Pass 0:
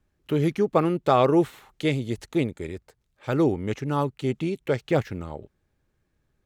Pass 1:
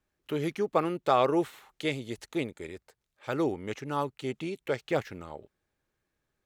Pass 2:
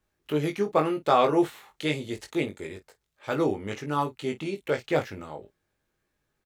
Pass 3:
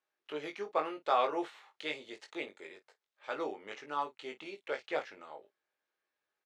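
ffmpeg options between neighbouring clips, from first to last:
ffmpeg -i in.wav -af "lowshelf=frequency=280:gain=-11.5,volume=-2.5dB" out.wav
ffmpeg -i in.wav -af "aecho=1:1:20|52:0.631|0.15,volume=2dB" out.wav
ffmpeg -i in.wav -af "highpass=550,lowpass=5000,volume=-6.5dB" out.wav

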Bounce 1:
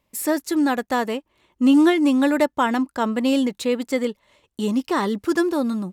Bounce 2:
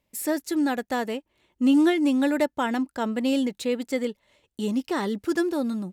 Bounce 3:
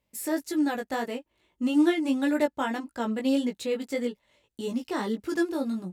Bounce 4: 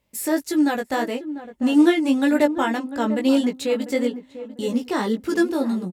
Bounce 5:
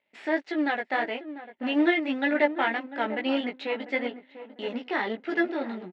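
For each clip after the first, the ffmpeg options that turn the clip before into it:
ffmpeg -i in.wav -af "equalizer=frequency=1100:width_type=o:width=0.38:gain=-7,volume=-4dB" out.wav
ffmpeg -i in.wav -af "flanger=delay=16.5:depth=2.3:speed=1.7" out.wav
ffmpeg -i in.wav -filter_complex "[0:a]asplit=2[link_01][link_02];[link_02]adelay=696,lowpass=frequency=920:poles=1,volume=-11.5dB,asplit=2[link_03][link_04];[link_04]adelay=696,lowpass=frequency=920:poles=1,volume=0.31,asplit=2[link_05][link_06];[link_06]adelay=696,lowpass=frequency=920:poles=1,volume=0.31[link_07];[link_01][link_03][link_05][link_07]amix=inputs=4:normalize=0,volume=6.5dB" out.wav
ffmpeg -i in.wav -af "aeval=exprs='if(lt(val(0),0),0.447*val(0),val(0))':channel_layout=same,highpass=440,equalizer=frequency=490:width_type=q:width=4:gain=-6,equalizer=frequency=1100:width_type=q:width=4:gain=-9,equalizer=frequency=2000:width_type=q:width=4:gain=5,lowpass=frequency=3300:width=0.5412,lowpass=frequency=3300:width=1.3066,volume=2dB" out.wav

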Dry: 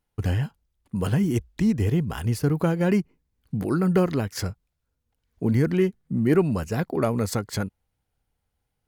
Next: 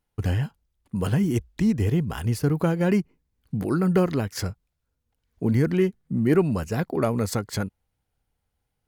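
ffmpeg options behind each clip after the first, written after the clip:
ffmpeg -i in.wav -af anull out.wav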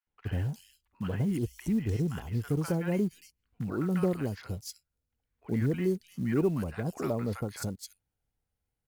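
ffmpeg -i in.wav -filter_complex "[0:a]acrossover=split=970|3600[link_01][link_02][link_03];[link_01]adelay=70[link_04];[link_03]adelay=300[link_05];[link_04][link_02][link_05]amix=inputs=3:normalize=0,acrusher=bits=8:mode=log:mix=0:aa=0.000001,volume=-7dB" out.wav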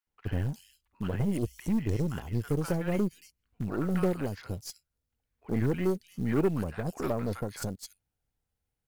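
ffmpeg -i in.wav -af "aeval=exprs='0.15*(cos(1*acos(clip(val(0)/0.15,-1,1)))-cos(1*PI/2))+0.015*(cos(6*acos(clip(val(0)/0.15,-1,1)))-cos(6*PI/2))':channel_layout=same" out.wav

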